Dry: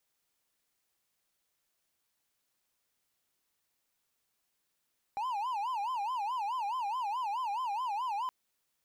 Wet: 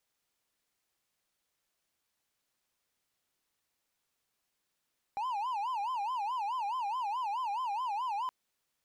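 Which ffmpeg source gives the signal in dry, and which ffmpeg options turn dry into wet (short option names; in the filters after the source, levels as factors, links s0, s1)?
-f lavfi -i "aevalsrc='0.0335*(1-4*abs(mod((918*t-122/(2*PI*4.7)*sin(2*PI*4.7*t))+0.25,1)-0.5))':d=3.12:s=44100"
-af "highshelf=f=9300:g=-5.5"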